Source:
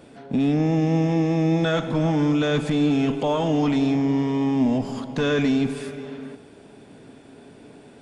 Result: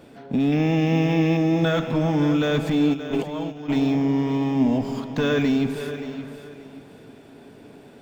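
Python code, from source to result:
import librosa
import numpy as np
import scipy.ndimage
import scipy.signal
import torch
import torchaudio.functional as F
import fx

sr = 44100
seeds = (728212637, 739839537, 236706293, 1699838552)

y = fx.peak_eq(x, sr, hz=2700.0, db=10.5, octaves=1.1, at=(0.52, 1.37))
y = fx.over_compress(y, sr, threshold_db=-28.0, ratio=-0.5, at=(2.93, 3.68), fade=0.02)
y = fx.echo_feedback(y, sr, ms=577, feedback_pct=27, wet_db=-12)
y = np.interp(np.arange(len(y)), np.arange(len(y))[::2], y[::2])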